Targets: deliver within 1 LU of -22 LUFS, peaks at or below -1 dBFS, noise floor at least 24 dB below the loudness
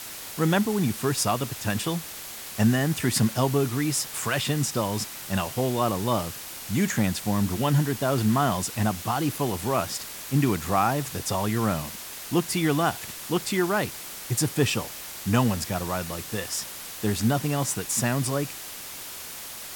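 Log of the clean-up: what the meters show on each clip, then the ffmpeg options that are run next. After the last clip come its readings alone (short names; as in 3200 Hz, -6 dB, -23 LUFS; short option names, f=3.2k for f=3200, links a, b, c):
noise floor -39 dBFS; noise floor target -50 dBFS; loudness -26.0 LUFS; peak -7.5 dBFS; loudness target -22.0 LUFS
-> -af "afftdn=nr=11:nf=-39"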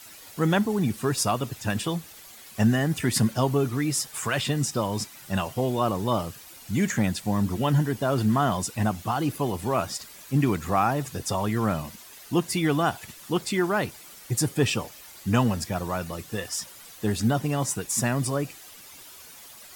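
noise floor -47 dBFS; noise floor target -51 dBFS
-> -af "afftdn=nr=6:nf=-47"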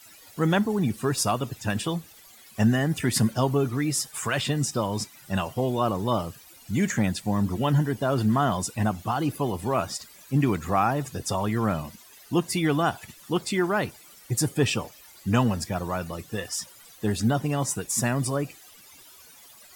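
noise floor -51 dBFS; loudness -26.5 LUFS; peak -8.0 dBFS; loudness target -22.0 LUFS
-> -af "volume=4.5dB"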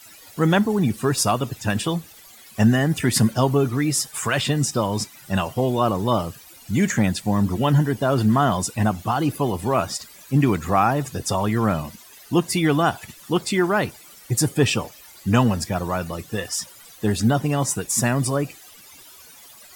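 loudness -22.0 LUFS; peak -3.5 dBFS; noise floor -47 dBFS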